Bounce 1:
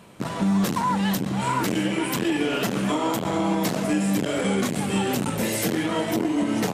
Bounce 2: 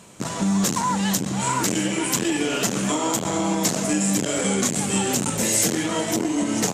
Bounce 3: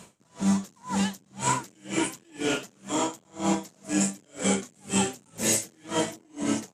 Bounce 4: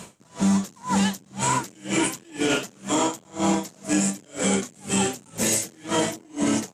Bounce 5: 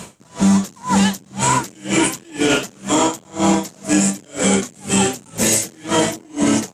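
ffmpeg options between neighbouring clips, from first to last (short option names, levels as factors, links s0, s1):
-af "equalizer=f=7000:t=o:w=0.88:g=14.5"
-af "aeval=exprs='val(0)*pow(10,-36*(0.5-0.5*cos(2*PI*2*n/s))/20)':c=same"
-af "alimiter=limit=0.0944:level=0:latency=1:release=47,volume=2.51"
-af "equalizer=f=60:w=1.5:g=4,volume=2.11"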